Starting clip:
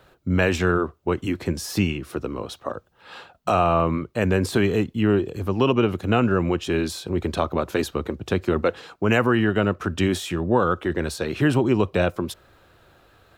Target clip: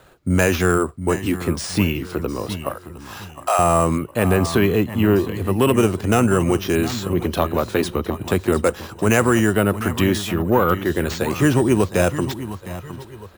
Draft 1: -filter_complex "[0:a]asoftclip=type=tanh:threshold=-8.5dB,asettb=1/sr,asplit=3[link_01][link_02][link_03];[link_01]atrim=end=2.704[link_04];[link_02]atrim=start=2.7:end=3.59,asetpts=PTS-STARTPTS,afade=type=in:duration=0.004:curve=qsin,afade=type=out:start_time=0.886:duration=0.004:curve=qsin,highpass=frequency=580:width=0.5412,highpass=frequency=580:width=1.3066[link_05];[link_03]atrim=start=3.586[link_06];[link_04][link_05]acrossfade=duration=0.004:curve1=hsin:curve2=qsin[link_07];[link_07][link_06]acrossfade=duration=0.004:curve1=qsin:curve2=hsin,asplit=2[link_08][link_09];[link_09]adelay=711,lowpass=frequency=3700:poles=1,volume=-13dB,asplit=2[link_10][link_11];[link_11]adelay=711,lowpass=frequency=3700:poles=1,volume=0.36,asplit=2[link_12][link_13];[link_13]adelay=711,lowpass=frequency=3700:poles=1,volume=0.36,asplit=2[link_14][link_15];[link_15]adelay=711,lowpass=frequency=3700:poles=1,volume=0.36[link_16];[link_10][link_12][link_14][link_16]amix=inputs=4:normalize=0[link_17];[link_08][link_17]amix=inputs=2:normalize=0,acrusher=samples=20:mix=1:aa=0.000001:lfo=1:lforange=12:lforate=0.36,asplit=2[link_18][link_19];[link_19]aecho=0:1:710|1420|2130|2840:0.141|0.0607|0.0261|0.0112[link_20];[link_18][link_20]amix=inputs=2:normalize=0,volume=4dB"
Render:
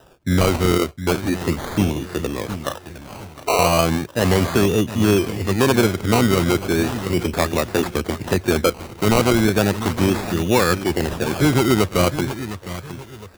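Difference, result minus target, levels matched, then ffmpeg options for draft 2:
sample-and-hold swept by an LFO: distortion +13 dB
-filter_complex "[0:a]asoftclip=type=tanh:threshold=-8.5dB,asettb=1/sr,asplit=3[link_01][link_02][link_03];[link_01]atrim=end=2.704[link_04];[link_02]atrim=start=2.7:end=3.59,asetpts=PTS-STARTPTS,afade=type=in:duration=0.004:curve=qsin,afade=type=out:start_time=0.886:duration=0.004:curve=qsin,highpass=frequency=580:width=0.5412,highpass=frequency=580:width=1.3066[link_05];[link_03]atrim=start=3.586[link_06];[link_04][link_05]acrossfade=duration=0.004:curve1=hsin:curve2=qsin[link_07];[link_07][link_06]acrossfade=duration=0.004:curve1=qsin:curve2=hsin,asplit=2[link_08][link_09];[link_09]adelay=711,lowpass=frequency=3700:poles=1,volume=-13dB,asplit=2[link_10][link_11];[link_11]adelay=711,lowpass=frequency=3700:poles=1,volume=0.36,asplit=2[link_12][link_13];[link_13]adelay=711,lowpass=frequency=3700:poles=1,volume=0.36,asplit=2[link_14][link_15];[link_15]adelay=711,lowpass=frequency=3700:poles=1,volume=0.36[link_16];[link_10][link_12][link_14][link_16]amix=inputs=4:normalize=0[link_17];[link_08][link_17]amix=inputs=2:normalize=0,acrusher=samples=4:mix=1:aa=0.000001:lfo=1:lforange=2.4:lforate=0.36,asplit=2[link_18][link_19];[link_19]aecho=0:1:710|1420|2130|2840:0.141|0.0607|0.0261|0.0112[link_20];[link_18][link_20]amix=inputs=2:normalize=0,volume=4dB"

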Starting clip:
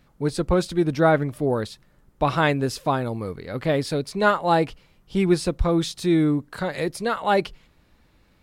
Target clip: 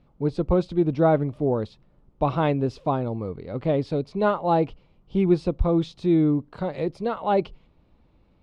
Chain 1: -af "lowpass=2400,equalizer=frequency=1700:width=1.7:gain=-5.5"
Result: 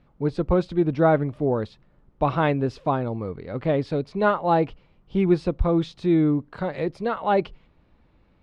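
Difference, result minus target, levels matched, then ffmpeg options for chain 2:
2,000 Hz band +5.0 dB
-af "lowpass=2400,equalizer=frequency=1700:width=1.7:gain=-13"

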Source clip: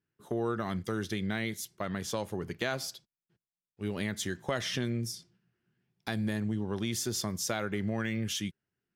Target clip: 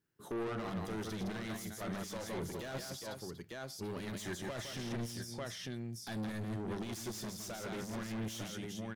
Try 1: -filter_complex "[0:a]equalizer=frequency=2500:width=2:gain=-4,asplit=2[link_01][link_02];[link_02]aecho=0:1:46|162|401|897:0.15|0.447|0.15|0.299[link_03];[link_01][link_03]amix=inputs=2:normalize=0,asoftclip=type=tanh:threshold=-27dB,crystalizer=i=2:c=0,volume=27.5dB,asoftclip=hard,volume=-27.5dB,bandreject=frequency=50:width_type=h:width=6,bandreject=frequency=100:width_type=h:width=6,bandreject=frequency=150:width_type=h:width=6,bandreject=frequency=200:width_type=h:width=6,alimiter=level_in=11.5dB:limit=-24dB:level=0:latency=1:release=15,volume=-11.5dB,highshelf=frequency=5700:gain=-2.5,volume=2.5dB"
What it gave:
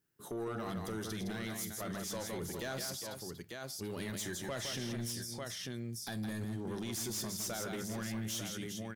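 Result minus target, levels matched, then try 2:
soft clipping: distortion −8 dB; 8,000 Hz band +4.5 dB
-filter_complex "[0:a]equalizer=frequency=2500:width=2:gain=-4,asplit=2[link_01][link_02];[link_02]aecho=0:1:46|162|401|897:0.15|0.447|0.15|0.299[link_03];[link_01][link_03]amix=inputs=2:normalize=0,asoftclip=type=tanh:threshold=-36.5dB,crystalizer=i=2:c=0,volume=27.5dB,asoftclip=hard,volume=-27.5dB,bandreject=frequency=50:width_type=h:width=6,bandreject=frequency=100:width_type=h:width=6,bandreject=frequency=150:width_type=h:width=6,bandreject=frequency=200:width_type=h:width=6,alimiter=level_in=11.5dB:limit=-24dB:level=0:latency=1:release=15,volume=-11.5dB,highshelf=frequency=5700:gain=-11,volume=2.5dB"

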